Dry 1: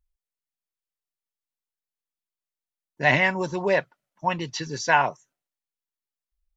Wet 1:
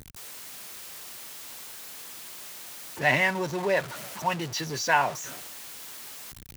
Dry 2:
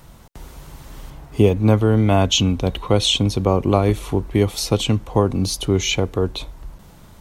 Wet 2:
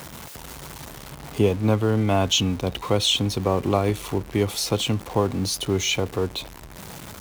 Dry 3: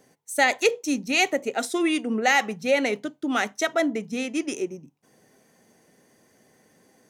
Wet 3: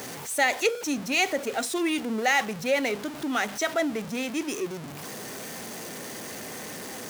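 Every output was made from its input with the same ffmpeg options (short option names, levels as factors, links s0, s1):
-af "aeval=exprs='val(0)+0.5*0.0398*sgn(val(0))':c=same,highpass=73,lowshelf=f=390:g=-3,volume=0.668"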